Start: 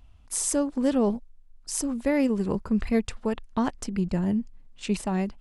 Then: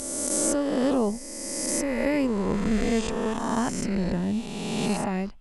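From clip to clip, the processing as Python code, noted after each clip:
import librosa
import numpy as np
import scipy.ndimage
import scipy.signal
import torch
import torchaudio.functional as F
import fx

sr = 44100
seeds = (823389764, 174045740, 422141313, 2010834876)

y = fx.spec_swells(x, sr, rise_s=2.16)
y = F.gain(torch.from_numpy(y), -2.5).numpy()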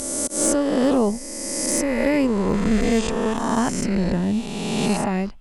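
y = fx.auto_swell(x, sr, attack_ms=148.0)
y = np.clip(10.0 ** (14.5 / 20.0) * y, -1.0, 1.0) / 10.0 ** (14.5 / 20.0)
y = F.gain(torch.from_numpy(y), 5.0).numpy()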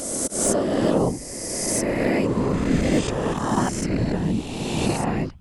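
y = fx.whisperise(x, sr, seeds[0])
y = F.gain(torch.from_numpy(y), -1.5).numpy()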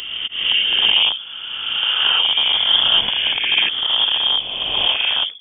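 y = fx.rattle_buzz(x, sr, strikes_db=-23.0, level_db=-21.0)
y = fx.freq_invert(y, sr, carrier_hz=3400)
y = F.gain(torch.from_numpy(y), 4.5).numpy()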